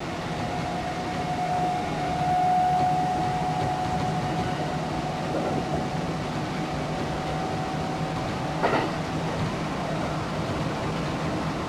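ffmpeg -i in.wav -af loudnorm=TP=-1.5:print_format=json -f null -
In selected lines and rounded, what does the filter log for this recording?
"input_i" : "-27.5",
"input_tp" : "-10.9",
"input_lra" : "3.1",
"input_thresh" : "-37.5",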